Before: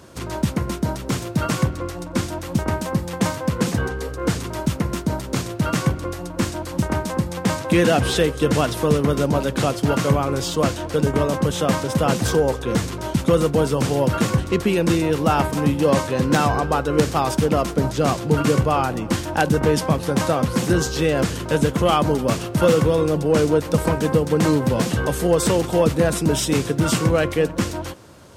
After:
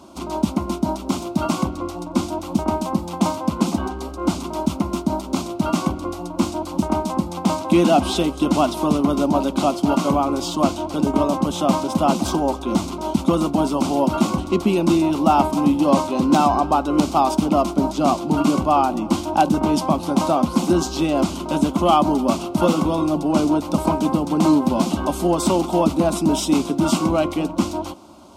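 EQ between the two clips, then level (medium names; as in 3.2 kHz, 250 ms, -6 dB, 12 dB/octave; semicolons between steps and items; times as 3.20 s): bass shelf 72 Hz -11.5 dB; treble shelf 4.7 kHz -11 dB; static phaser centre 470 Hz, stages 6; +6.0 dB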